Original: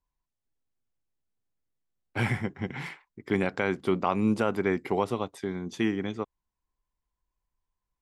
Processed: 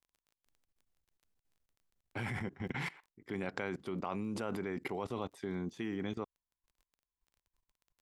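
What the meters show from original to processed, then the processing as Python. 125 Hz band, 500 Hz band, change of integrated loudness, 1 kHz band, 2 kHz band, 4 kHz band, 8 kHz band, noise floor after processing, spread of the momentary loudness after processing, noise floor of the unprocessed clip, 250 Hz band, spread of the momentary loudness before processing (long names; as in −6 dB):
−9.5 dB, −11.0 dB, −10.5 dB, −11.0 dB, −9.0 dB, −8.0 dB, −7.0 dB, below −85 dBFS, 5 LU, below −85 dBFS, −10.5 dB, 12 LU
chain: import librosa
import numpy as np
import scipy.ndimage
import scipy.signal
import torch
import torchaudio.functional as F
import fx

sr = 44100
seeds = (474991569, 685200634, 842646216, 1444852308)

y = fx.level_steps(x, sr, step_db=20)
y = fx.dmg_crackle(y, sr, seeds[0], per_s=17.0, level_db=-57.0)
y = F.gain(torch.from_numpy(y), 2.5).numpy()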